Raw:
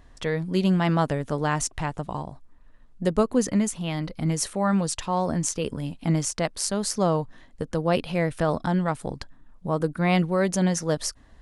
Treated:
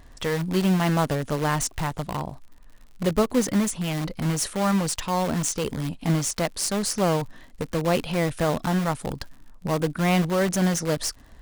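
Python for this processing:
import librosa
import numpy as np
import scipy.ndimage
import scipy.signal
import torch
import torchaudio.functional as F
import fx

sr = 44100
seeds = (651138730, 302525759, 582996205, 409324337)

p1 = fx.dmg_crackle(x, sr, seeds[0], per_s=81.0, level_db=-45.0)
p2 = (np.mod(10.0 ** (24.0 / 20.0) * p1 + 1.0, 2.0) - 1.0) / 10.0 ** (24.0 / 20.0)
y = p1 + (p2 * librosa.db_to_amplitude(-6.5))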